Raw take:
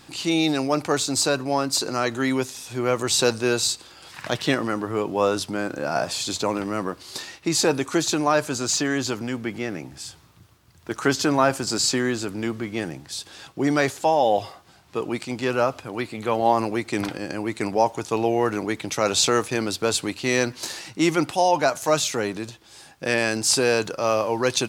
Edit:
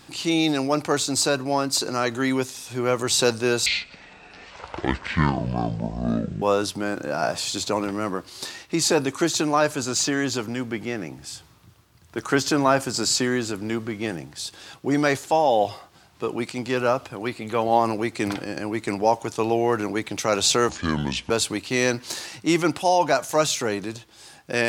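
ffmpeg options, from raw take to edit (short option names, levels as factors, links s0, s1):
-filter_complex "[0:a]asplit=5[s0][s1][s2][s3][s4];[s0]atrim=end=3.664[s5];[s1]atrim=start=3.66:end=5.15,asetpts=PTS-STARTPTS,asetrate=23814,aresample=44100,atrim=end_sample=121683,asetpts=PTS-STARTPTS[s6];[s2]atrim=start=5.146:end=19.424[s7];[s3]atrim=start=19.42:end=19.83,asetpts=PTS-STARTPTS,asetrate=29547,aresample=44100[s8];[s4]atrim=start=19.826[s9];[s5][s6]acrossfade=d=0.004:c1=hsin:c2=hsin[s10];[s10][s7]acrossfade=d=0.004:c1=hsin:c2=hsin[s11];[s11][s8]acrossfade=d=0.004:c1=hsin:c2=hsin[s12];[s12][s9]acrossfade=d=0.004:c1=hsin:c2=hsin"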